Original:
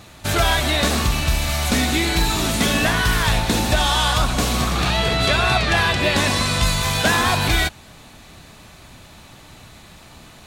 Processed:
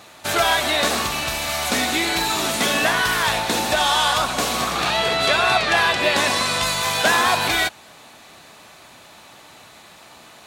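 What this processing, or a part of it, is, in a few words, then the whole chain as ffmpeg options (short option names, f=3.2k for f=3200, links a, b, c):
filter by subtraction: -filter_complex "[0:a]asplit=2[a][b];[b]lowpass=690,volume=-1[c];[a][c]amix=inputs=2:normalize=0"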